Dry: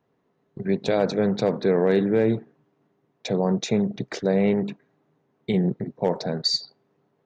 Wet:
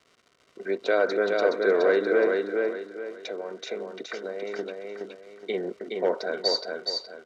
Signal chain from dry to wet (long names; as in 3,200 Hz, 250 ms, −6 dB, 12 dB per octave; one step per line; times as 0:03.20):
high-pass filter 350 Hz 24 dB per octave
parametric band 1,500 Hz +11.5 dB 0.35 octaves
0:02.27–0:04.59: downward compressor, threshold −31 dBFS, peak gain reduction 12 dB
surface crackle 190 per second −40 dBFS
high-frequency loss of the air 84 metres
notch comb filter 840 Hz
repeating echo 420 ms, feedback 33%, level −3.5 dB